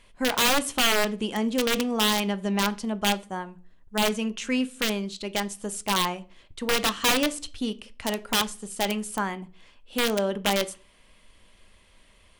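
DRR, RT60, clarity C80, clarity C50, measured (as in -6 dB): 11.5 dB, not exponential, 26.0 dB, 20.5 dB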